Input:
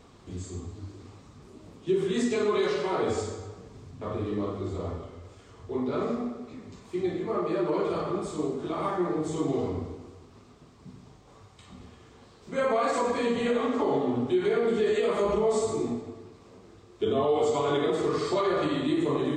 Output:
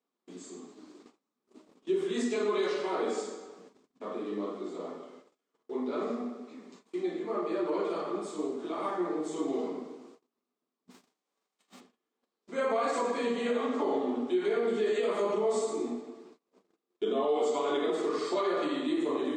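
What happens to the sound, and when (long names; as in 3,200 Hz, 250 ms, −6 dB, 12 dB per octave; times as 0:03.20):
0:10.90–0:11.79: spectral envelope flattened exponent 0.6
whole clip: Butterworth high-pass 210 Hz 36 dB per octave; noise gate −49 dBFS, range −28 dB; level −3.5 dB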